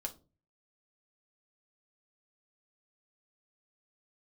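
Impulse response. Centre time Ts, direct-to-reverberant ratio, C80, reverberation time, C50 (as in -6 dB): 6 ms, 2.0 dB, 23.0 dB, 0.35 s, 16.5 dB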